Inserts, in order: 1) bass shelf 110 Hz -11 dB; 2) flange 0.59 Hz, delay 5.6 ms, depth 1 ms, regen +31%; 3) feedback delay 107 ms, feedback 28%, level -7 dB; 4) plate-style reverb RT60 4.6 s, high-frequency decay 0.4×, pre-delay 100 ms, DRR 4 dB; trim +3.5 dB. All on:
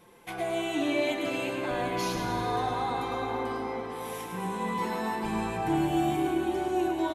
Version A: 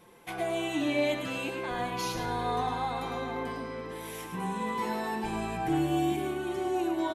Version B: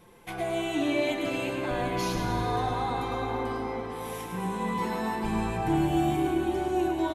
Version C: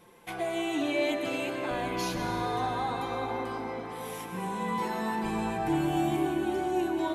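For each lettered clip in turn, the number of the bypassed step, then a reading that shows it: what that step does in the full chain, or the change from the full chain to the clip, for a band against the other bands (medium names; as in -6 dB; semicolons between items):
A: 4, echo-to-direct -1.5 dB to -6.5 dB; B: 1, 125 Hz band +4.5 dB; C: 3, echo-to-direct -1.5 dB to -4.0 dB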